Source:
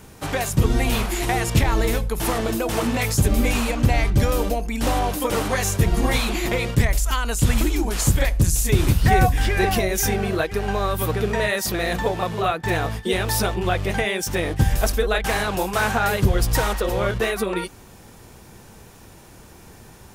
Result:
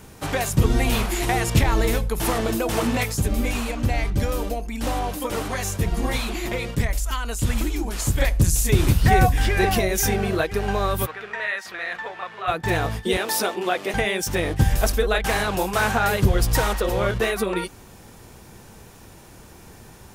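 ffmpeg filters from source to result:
ffmpeg -i in.wav -filter_complex "[0:a]asplit=3[link_01][link_02][link_03];[link_01]afade=type=out:start_time=3.03:duration=0.02[link_04];[link_02]flanger=delay=2.6:depth=1.7:regen=-71:speed=1.1:shape=triangular,afade=type=in:start_time=3.03:duration=0.02,afade=type=out:start_time=8.17:duration=0.02[link_05];[link_03]afade=type=in:start_time=8.17:duration=0.02[link_06];[link_04][link_05][link_06]amix=inputs=3:normalize=0,asplit=3[link_07][link_08][link_09];[link_07]afade=type=out:start_time=11.05:duration=0.02[link_10];[link_08]bandpass=frequency=1700:width_type=q:width=1.5,afade=type=in:start_time=11.05:duration=0.02,afade=type=out:start_time=12.47:duration=0.02[link_11];[link_09]afade=type=in:start_time=12.47:duration=0.02[link_12];[link_10][link_11][link_12]amix=inputs=3:normalize=0,asettb=1/sr,asplit=3[link_13][link_14][link_15];[link_13]atrim=end=13.174[link_16];[link_14]atrim=start=13.17:end=13.94,asetpts=PTS-STARTPTS,afade=type=in:duration=0.004:curve=qsin,afade=type=out:start_time=0.766:duration=0.004:curve=qsin,highpass=frequency=240:width=0.5412,highpass=frequency=240:width=1.3066[link_17];[link_15]atrim=start=13.936[link_18];[link_16][link_17]acrossfade=duration=0.004:curve1=hsin:curve2=qsin[link_19];[link_19][link_18]acrossfade=duration=0.004:curve1=qsin:curve2=hsin" out.wav

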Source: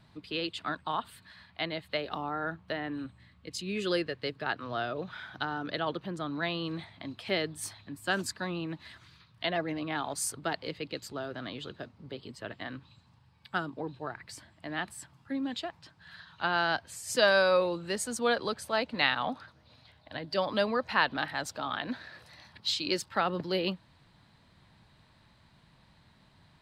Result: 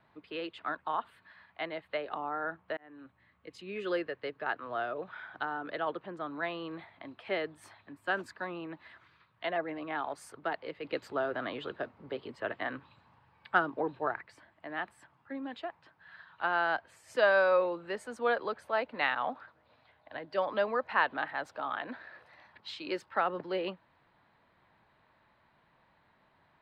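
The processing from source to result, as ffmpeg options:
ffmpeg -i in.wav -filter_complex "[0:a]asettb=1/sr,asplit=3[link_01][link_02][link_03];[link_01]atrim=end=10.844[link_04];[link_02]atrim=start=10.84:end=14.21,asetpts=PTS-STARTPTS,afade=type=in:duration=0.004:curve=qsin,afade=type=out:start_time=3.366:duration=0.004:curve=qsin,acontrast=80[link_05];[link_03]atrim=start=14.206[link_06];[link_04][link_05]acrossfade=duration=0.004:curve1=hsin:curve2=qsin[link_07];[link_07][link_06]acrossfade=duration=0.004:curve1=qsin:curve2=hsin,asplit=2[link_08][link_09];[link_08]atrim=end=2.77,asetpts=PTS-STARTPTS,afade=type=out:start_time=2.766:duration=0.004:curve=hsin[link_10];[link_09]atrim=start=2.77,asetpts=PTS-STARTPTS,afade=type=in:duration=0.77:curve=qsin[link_11];[link_10][link_11]concat=n=2:v=0:a=1,acrossover=split=330 2500:gain=0.2 1 0.0891[link_12][link_13][link_14];[link_12][link_13][link_14]amix=inputs=3:normalize=0" out.wav

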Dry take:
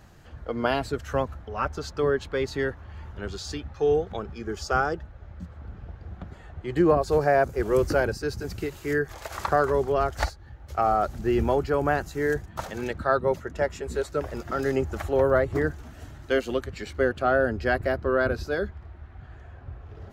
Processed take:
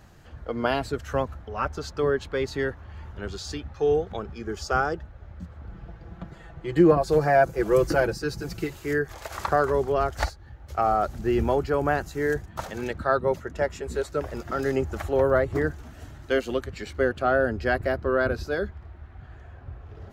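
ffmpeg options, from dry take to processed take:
ffmpeg -i in.wav -filter_complex "[0:a]asettb=1/sr,asplit=3[link_01][link_02][link_03];[link_01]atrim=end=5.694[link_04];[link_02]atrim=start=5.69:end=8.73,asetpts=PTS-STARTPTS,afade=type=in:duration=0.004:curve=qsin,afade=type=out:start_time=3.036:duration=0.004:curve=qsin,aecho=1:1:6:0.62,atrim=end_sample=134064[link_05];[link_03]atrim=start=8.726[link_06];[link_04][link_05]acrossfade=duration=0.004:curve1=hsin:curve2=qsin[link_07];[link_07][link_06]acrossfade=duration=0.004:curve1=qsin:curve2=hsin" out.wav

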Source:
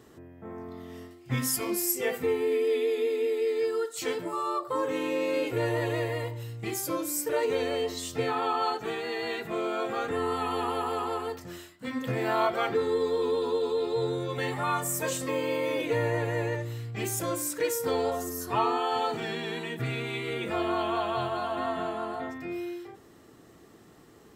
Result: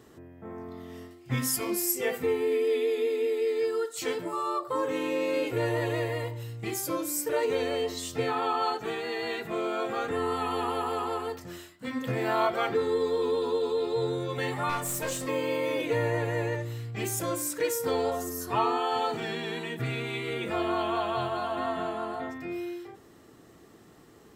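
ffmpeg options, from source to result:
ffmpeg -i in.wav -filter_complex "[0:a]asettb=1/sr,asplit=3[link_01][link_02][link_03];[link_01]atrim=end=14.694[link_04];[link_02]atrim=start=14.69:end=15.26,asetpts=PTS-STARTPTS,afade=type=in:duration=0.004:curve=qsin,afade=type=out:start_time=0.566:duration=0.004:curve=qsin,aeval=exprs='clip(val(0),-1,0.0266)':channel_layout=same[link_05];[link_03]atrim=start=15.256[link_06];[link_04][link_05]acrossfade=duration=0.004:curve1=hsin:curve2=qsin[link_07];[link_07][link_06]acrossfade=duration=0.004:curve1=qsin:curve2=hsin" out.wav

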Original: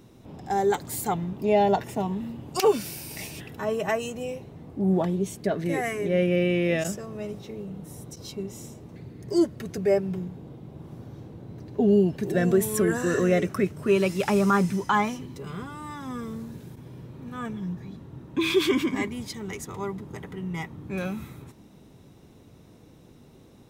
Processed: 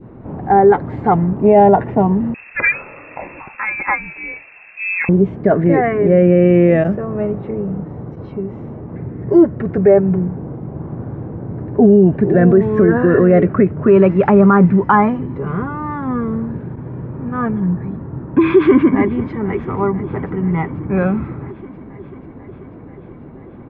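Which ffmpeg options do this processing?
ffmpeg -i in.wav -filter_complex "[0:a]asettb=1/sr,asplit=3[link_01][link_02][link_03];[link_01]atrim=end=2.344[link_04];[link_02]atrim=start=2.34:end=5.09,asetpts=PTS-STARTPTS,afade=type=in:duration=0.004:curve=qsin,afade=type=out:start_time=2.746:duration=0.004:curve=qsin,lowpass=frequency=2400:width_type=q:width=0.5098,lowpass=frequency=2400:width_type=q:width=0.6013,lowpass=frequency=2400:width_type=q:width=0.9,lowpass=frequency=2400:width_type=q:width=2.563,afreqshift=-2800[link_05];[link_03]atrim=start=5.086[link_06];[link_04][link_05]acrossfade=duration=0.004:curve1=hsin:curve2=qsin[link_07];[link_07][link_06]acrossfade=duration=0.004:curve1=qsin:curve2=hsin,asettb=1/sr,asplit=3[link_08][link_09][link_10];[link_08]atrim=end=7.834[link_11];[link_09]atrim=start=7.83:end=8.92,asetpts=PTS-STARTPTS,afade=type=in:duration=0.004:curve=qsin,afade=type=out:start_time=1.086:duration=0.004:curve=qsin,acompressor=threshold=-42dB:ratio=1.5:attack=3.2:release=140:knee=1:detection=peak[link_12];[link_10]atrim=start=8.916[link_13];[link_11][link_12]acrossfade=duration=0.004:curve1=hsin:curve2=qsin[link_14];[link_14][link_13]acrossfade=duration=0.004:curve1=qsin:curve2=hsin,asplit=2[link_15][link_16];[link_16]afade=type=in:start_time=18.56:duration=0.01,afade=type=out:start_time=19.52:duration=0.01,aecho=0:1:490|980|1470|1960|2450|2940|3430|3920|4410|4900|5390|5880:0.125893|0.100714|0.0805712|0.064457|0.0515656|0.0412525|0.033002|0.0264016|0.0211213|0.016897|0.0135176|0.0108141[link_17];[link_15][link_17]amix=inputs=2:normalize=0,lowpass=frequency=1700:width=0.5412,lowpass=frequency=1700:width=1.3066,adynamicequalizer=threshold=0.00891:dfrequency=1300:dqfactor=0.82:tfrequency=1300:tqfactor=0.82:attack=5:release=100:ratio=0.375:range=2:mode=cutabove:tftype=bell,alimiter=level_in=16dB:limit=-1dB:release=50:level=0:latency=1,volume=-1dB" out.wav

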